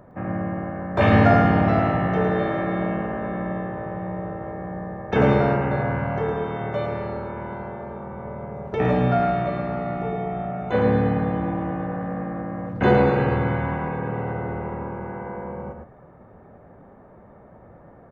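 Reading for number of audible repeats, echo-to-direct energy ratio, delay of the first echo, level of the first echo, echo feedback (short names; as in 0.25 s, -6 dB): 1, -6.0 dB, 0.11 s, -6.0 dB, no steady repeat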